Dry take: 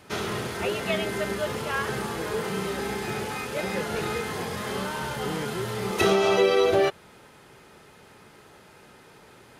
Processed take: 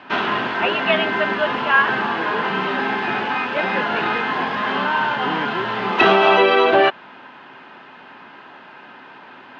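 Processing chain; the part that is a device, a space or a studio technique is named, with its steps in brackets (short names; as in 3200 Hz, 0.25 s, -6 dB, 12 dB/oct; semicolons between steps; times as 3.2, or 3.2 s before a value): kitchen radio (speaker cabinet 220–3800 Hz, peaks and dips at 260 Hz +8 dB, 450 Hz -6 dB, 720 Hz +5 dB, 1000 Hz +10 dB, 1600 Hz +9 dB, 2800 Hz +7 dB); gain +6 dB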